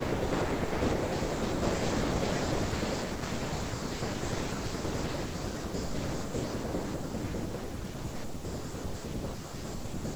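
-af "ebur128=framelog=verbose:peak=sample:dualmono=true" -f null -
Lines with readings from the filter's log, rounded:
Integrated loudness:
  I:         -31.1 LUFS
  Threshold: -41.1 LUFS
Loudness range:
  LRA:         5.9 LU
  Threshold: -51.3 LUFS
  LRA low:   -34.5 LUFS
  LRA high:  -28.6 LUFS
Sample peak:
  Peak:      -15.2 dBFS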